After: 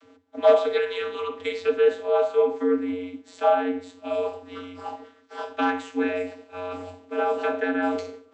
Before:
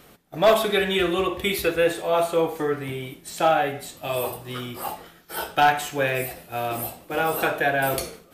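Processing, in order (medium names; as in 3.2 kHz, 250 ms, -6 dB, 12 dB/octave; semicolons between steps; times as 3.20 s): vocoder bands 32, square 90.4 Hz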